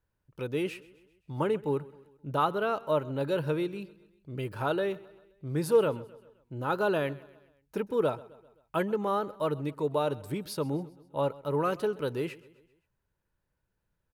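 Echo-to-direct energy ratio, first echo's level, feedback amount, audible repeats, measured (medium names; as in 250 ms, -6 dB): -19.5 dB, -21.0 dB, 52%, 3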